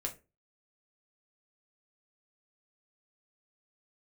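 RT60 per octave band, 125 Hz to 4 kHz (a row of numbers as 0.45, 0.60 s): 0.40, 0.35, 0.35, 0.25, 0.25, 0.20 s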